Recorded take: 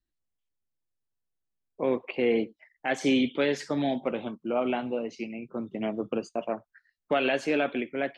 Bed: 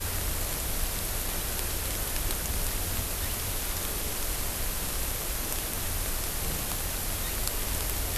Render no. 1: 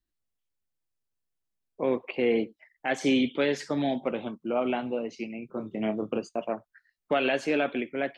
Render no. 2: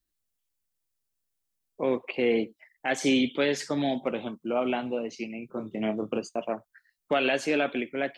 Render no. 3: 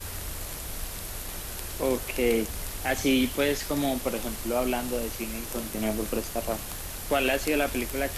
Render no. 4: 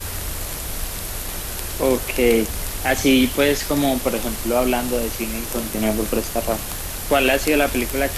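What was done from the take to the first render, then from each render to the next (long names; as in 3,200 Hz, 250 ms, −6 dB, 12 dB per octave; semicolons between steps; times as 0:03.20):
0:05.47–0:06.19: double-tracking delay 28 ms −6.5 dB
high-shelf EQ 4,900 Hz +9 dB
mix in bed −5 dB
level +8 dB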